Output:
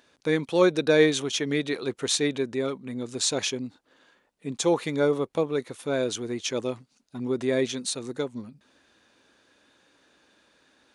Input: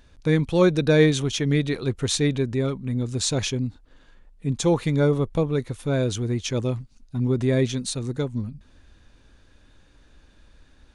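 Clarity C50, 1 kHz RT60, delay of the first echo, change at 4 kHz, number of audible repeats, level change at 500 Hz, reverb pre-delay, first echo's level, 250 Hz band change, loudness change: no reverb, no reverb, no echo, 0.0 dB, no echo, -1.0 dB, no reverb, no echo, -4.5 dB, -3.0 dB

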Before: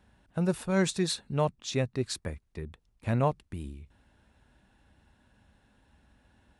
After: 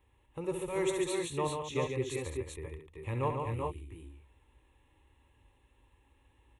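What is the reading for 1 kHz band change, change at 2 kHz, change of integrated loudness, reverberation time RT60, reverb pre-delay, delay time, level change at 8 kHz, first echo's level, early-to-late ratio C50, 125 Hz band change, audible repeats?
-2.0 dB, -4.0 dB, -4.0 dB, no reverb, no reverb, 66 ms, -4.5 dB, -9.0 dB, no reverb, -6.5 dB, 4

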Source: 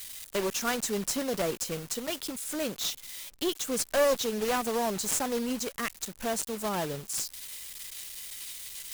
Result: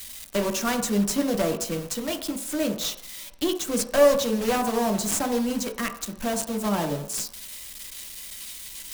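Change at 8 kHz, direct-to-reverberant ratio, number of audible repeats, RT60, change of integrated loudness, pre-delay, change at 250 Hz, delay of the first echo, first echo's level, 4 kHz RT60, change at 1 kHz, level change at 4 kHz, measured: +2.5 dB, 4.5 dB, no echo, 0.70 s, +5.0 dB, 3 ms, +8.5 dB, no echo, no echo, 0.70 s, +4.5 dB, +2.5 dB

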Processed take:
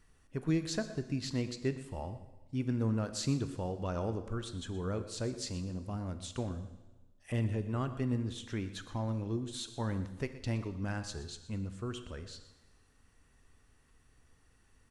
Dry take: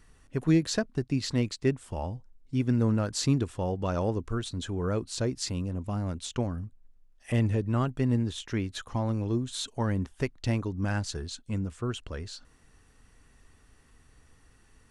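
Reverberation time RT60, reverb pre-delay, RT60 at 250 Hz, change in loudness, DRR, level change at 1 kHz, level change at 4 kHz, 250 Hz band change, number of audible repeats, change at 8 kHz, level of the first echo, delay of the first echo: 1.2 s, 4 ms, 1.2 s, -6.5 dB, 9.0 dB, -6.5 dB, -6.5 dB, -7.0 dB, 1, -6.5 dB, -15.5 dB, 121 ms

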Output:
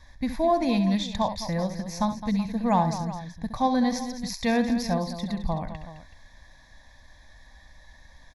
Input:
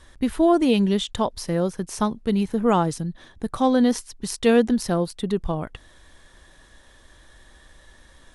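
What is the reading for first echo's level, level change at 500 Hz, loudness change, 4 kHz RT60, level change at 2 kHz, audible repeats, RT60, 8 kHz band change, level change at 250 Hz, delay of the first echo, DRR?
-10.0 dB, -6.5 dB, -4.0 dB, no reverb, -2.5 dB, 3, no reverb, -5.5 dB, -4.0 dB, 67 ms, no reverb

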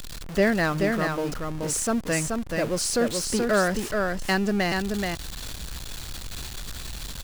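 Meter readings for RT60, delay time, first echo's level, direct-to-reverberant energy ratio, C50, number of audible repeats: no reverb, 429 ms, -4.0 dB, no reverb, no reverb, 1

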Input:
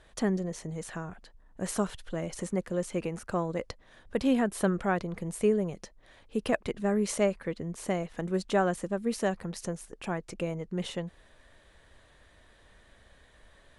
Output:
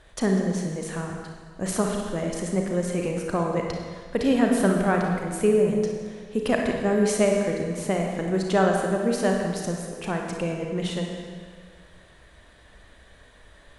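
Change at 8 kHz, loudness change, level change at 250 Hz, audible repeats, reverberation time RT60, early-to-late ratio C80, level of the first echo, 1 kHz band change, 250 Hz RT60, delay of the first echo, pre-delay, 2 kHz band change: +6.0 dB, +6.5 dB, +6.5 dB, no echo, 1.8 s, 4.0 dB, no echo, +6.5 dB, 1.8 s, no echo, 33 ms, +6.5 dB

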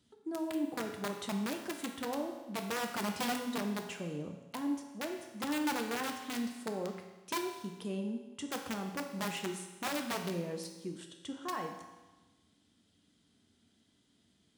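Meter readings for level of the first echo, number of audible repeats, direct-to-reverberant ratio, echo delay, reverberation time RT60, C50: no echo, no echo, 3.5 dB, no echo, 1.2 s, 6.0 dB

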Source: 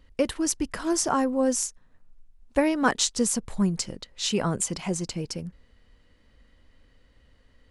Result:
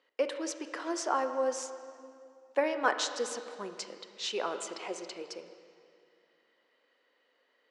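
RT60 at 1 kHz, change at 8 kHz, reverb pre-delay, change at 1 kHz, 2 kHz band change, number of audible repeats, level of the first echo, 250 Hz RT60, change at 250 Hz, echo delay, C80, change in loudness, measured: 2.3 s, -13.0 dB, 31 ms, -3.5 dB, -3.5 dB, no echo, no echo, 2.4 s, -15.0 dB, no echo, 9.5 dB, -8.0 dB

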